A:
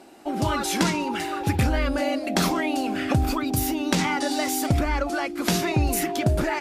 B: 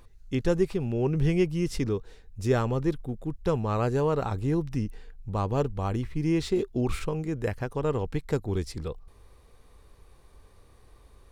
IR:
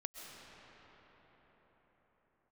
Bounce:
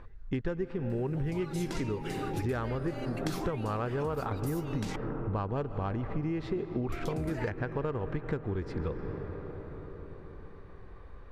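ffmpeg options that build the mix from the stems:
-filter_complex "[0:a]acompressor=mode=upward:threshold=-37dB:ratio=2.5,adelay=900,volume=-8.5dB,asplit=3[link_01][link_02][link_03];[link_01]atrim=end=4.96,asetpts=PTS-STARTPTS,afade=type=out:start_time=4.956:duration=0.004:curve=hsin[link_04];[link_02]atrim=start=4.96:end=6.92,asetpts=PTS-STARTPTS,volume=0[link_05];[link_03]atrim=start=6.92,asetpts=PTS-STARTPTS,afade=type=in:duration=0.004:curve=hsin[link_06];[link_04][link_05][link_06]concat=n=3:v=0:a=1[link_07];[1:a]equalizer=frequency=1600:width_type=o:width=0.8:gain=7,adynamicsmooth=sensitivity=1:basefreq=2300,volume=2dB,asplit=2[link_08][link_09];[link_09]volume=-4dB[link_10];[2:a]atrim=start_sample=2205[link_11];[link_10][link_11]afir=irnorm=-1:irlink=0[link_12];[link_07][link_08][link_12]amix=inputs=3:normalize=0,acompressor=threshold=-29dB:ratio=10"

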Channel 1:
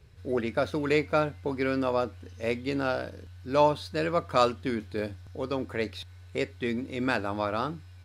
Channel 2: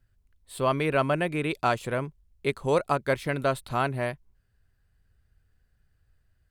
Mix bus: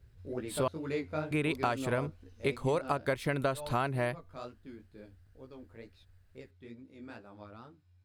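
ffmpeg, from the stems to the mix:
ffmpeg -i stem1.wav -i stem2.wav -filter_complex "[0:a]lowshelf=frequency=370:gain=8,flanger=delay=15:depth=5.4:speed=2.2,volume=-10dB,afade=type=out:start_time=2.86:duration=0.27:silence=0.298538[link_01];[1:a]volume=1dB,asplit=3[link_02][link_03][link_04];[link_02]atrim=end=0.68,asetpts=PTS-STARTPTS,afade=type=out:start_time=0.676:duration=0.004:curve=hsin[link_05];[link_03]atrim=start=0.68:end=1.31,asetpts=PTS-STARTPTS,volume=0[link_06];[link_04]atrim=start=1.31,asetpts=PTS-STARTPTS,afade=type=in:duration=0.004:curve=hsin[link_07];[link_05][link_06][link_07]concat=n=3:v=0:a=1[link_08];[link_01][link_08]amix=inputs=2:normalize=0,acompressor=threshold=-26dB:ratio=12" out.wav

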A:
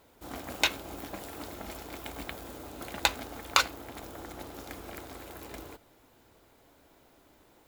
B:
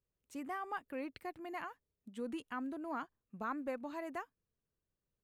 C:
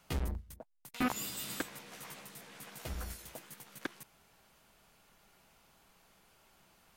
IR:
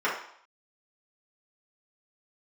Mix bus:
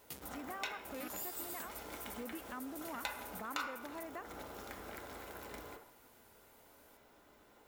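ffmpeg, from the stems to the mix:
-filter_complex "[0:a]volume=-5.5dB,asplit=2[link_01][link_02];[link_02]volume=-13dB[link_03];[1:a]volume=0dB,asplit=2[link_04][link_05];[2:a]highpass=160,aemphasis=mode=production:type=75fm,volume=-11.5dB[link_06];[link_05]apad=whole_len=338257[link_07];[link_01][link_07]sidechaincompress=threshold=-44dB:ratio=8:attack=16:release=183[link_08];[3:a]atrim=start_sample=2205[link_09];[link_03][link_09]afir=irnorm=-1:irlink=0[link_10];[link_08][link_04][link_06][link_10]amix=inputs=4:normalize=0,acompressor=threshold=-45dB:ratio=2"

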